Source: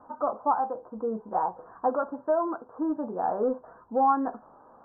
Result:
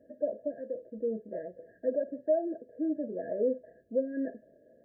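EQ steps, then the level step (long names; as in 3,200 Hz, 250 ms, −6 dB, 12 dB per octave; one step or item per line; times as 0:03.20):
high-pass filter 44 Hz
linear-phase brick-wall band-stop 680–1,600 Hz
low-shelf EQ 260 Hz −6.5 dB
0.0 dB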